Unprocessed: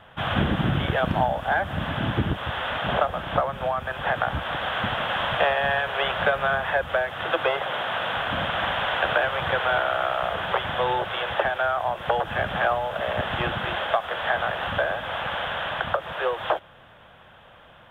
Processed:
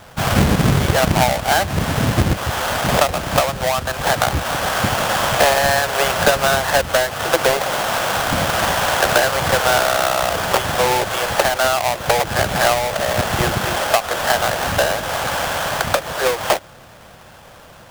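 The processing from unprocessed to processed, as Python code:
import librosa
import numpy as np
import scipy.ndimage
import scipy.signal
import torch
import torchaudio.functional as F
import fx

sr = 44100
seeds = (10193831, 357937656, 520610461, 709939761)

y = fx.halfwave_hold(x, sr)
y = F.gain(torch.from_numpy(y), 3.5).numpy()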